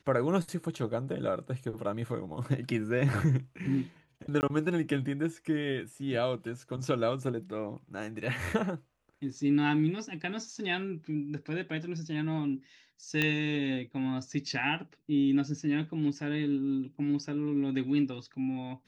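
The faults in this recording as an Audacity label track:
4.410000	4.430000	dropout 19 ms
13.220000	13.220000	pop -14 dBFS

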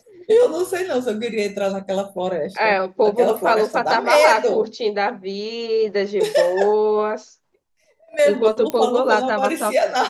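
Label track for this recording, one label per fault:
8.700000	8.700000	pop -10 dBFS

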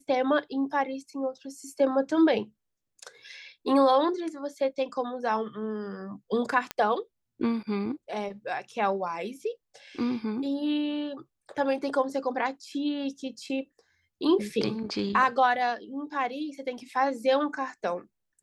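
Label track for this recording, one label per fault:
6.710000	6.710000	pop -14 dBFS

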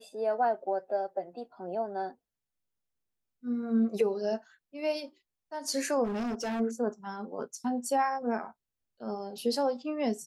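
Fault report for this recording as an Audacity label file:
6.040000	6.610000	clipped -30 dBFS

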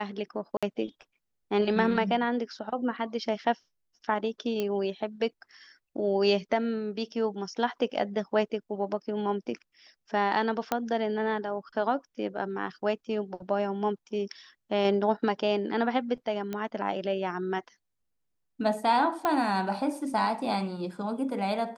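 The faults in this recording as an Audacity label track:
0.570000	0.630000	dropout 56 ms
4.600000	4.600000	pop -17 dBFS
10.720000	10.720000	pop -12 dBFS
16.530000	16.530000	pop -20 dBFS
19.250000	19.250000	pop -14 dBFS

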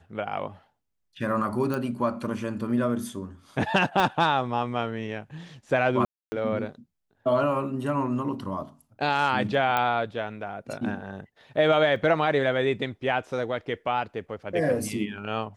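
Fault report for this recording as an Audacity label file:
1.740000	1.740000	pop
4.000000	4.000000	pop -12 dBFS
6.050000	6.320000	dropout 270 ms
9.770000	9.770000	pop -12 dBFS
11.960000	11.960000	dropout 2.3 ms

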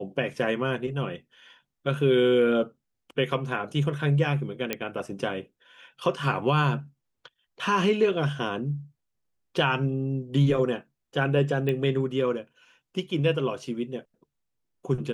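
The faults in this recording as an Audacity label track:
4.730000	4.730000	pop -11 dBFS
11.690000	11.690000	pop -17 dBFS

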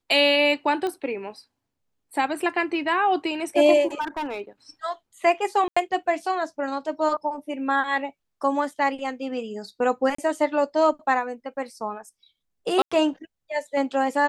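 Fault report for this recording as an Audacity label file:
0.870000	0.870000	pop -17 dBFS
4.000000	4.410000	clipped -25.5 dBFS
5.680000	5.760000	dropout 85 ms
10.150000	10.180000	dropout 34 ms
12.820000	12.910000	dropout 95 ms

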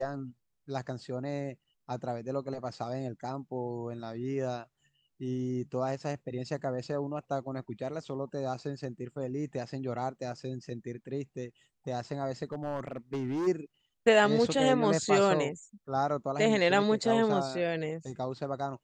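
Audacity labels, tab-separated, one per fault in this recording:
12.440000	13.480000	clipped -29 dBFS

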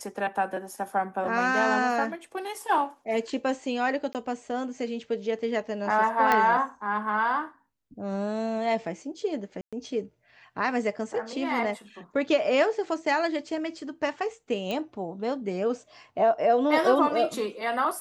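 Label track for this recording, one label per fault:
4.130000	4.150000	dropout 18 ms
6.320000	6.320000	pop -10 dBFS
9.610000	9.730000	dropout 116 ms
14.710000	14.710000	pop -18 dBFS

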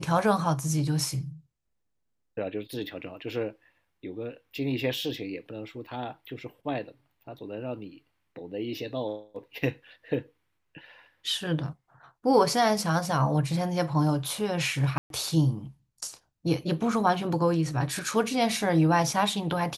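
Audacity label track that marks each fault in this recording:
14.980000	15.100000	dropout 122 ms

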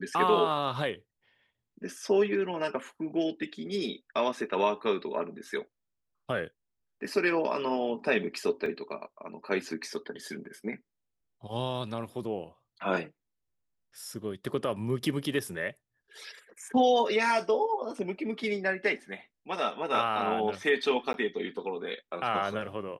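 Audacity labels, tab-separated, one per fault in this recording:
8.660000	8.660000	dropout 3.3 ms
21.130000	21.140000	dropout

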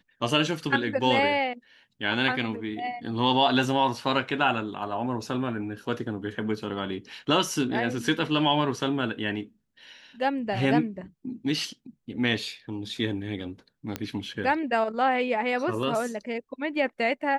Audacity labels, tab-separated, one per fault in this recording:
13.960000	13.960000	pop -14 dBFS

